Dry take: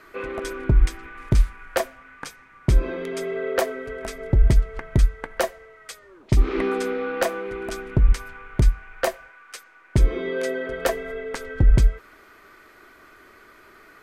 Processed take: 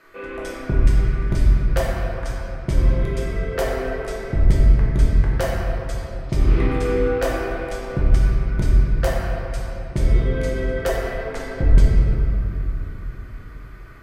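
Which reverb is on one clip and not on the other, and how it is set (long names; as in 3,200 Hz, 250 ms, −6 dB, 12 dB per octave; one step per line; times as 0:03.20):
rectangular room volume 140 cubic metres, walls hard, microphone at 0.74 metres
level −5 dB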